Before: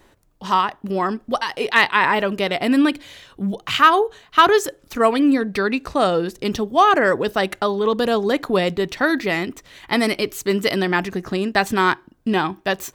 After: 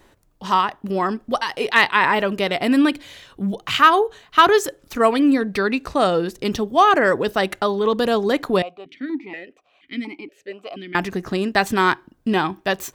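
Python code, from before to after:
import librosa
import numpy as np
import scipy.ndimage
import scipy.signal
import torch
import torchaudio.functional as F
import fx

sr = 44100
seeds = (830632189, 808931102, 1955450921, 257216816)

y = fx.vowel_held(x, sr, hz=4.2, at=(8.62, 10.95))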